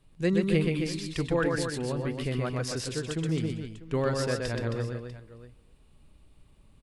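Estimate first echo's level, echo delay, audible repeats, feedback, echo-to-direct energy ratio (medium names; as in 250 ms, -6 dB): -3.5 dB, 125 ms, 5, no regular repeats, -2.0 dB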